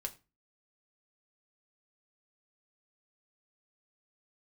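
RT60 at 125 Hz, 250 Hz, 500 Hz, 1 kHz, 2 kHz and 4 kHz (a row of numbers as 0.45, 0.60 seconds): 0.40, 0.40, 0.30, 0.30, 0.25, 0.25 seconds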